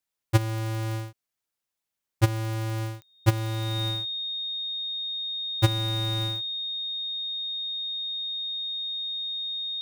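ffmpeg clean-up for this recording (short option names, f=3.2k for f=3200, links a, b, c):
-af "adeclick=t=4,bandreject=f=3.7k:w=30"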